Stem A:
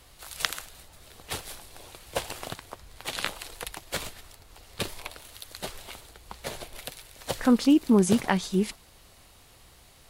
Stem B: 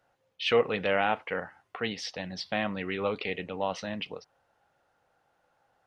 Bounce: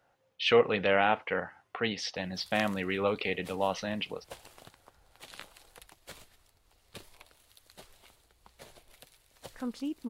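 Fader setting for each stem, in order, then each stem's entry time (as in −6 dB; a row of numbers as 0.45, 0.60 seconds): −16.0, +1.0 decibels; 2.15, 0.00 seconds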